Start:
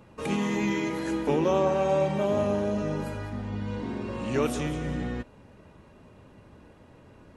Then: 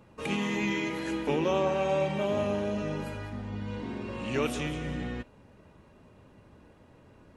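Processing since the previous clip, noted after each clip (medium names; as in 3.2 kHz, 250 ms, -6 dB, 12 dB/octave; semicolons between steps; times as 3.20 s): dynamic bell 2.7 kHz, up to +7 dB, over -51 dBFS, Q 1.3; trim -3.5 dB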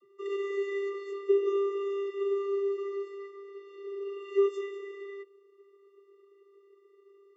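vocoder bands 32, square 397 Hz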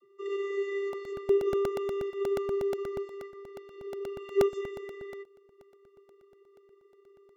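crackling interface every 0.12 s, samples 64, repeat, from 0.93 s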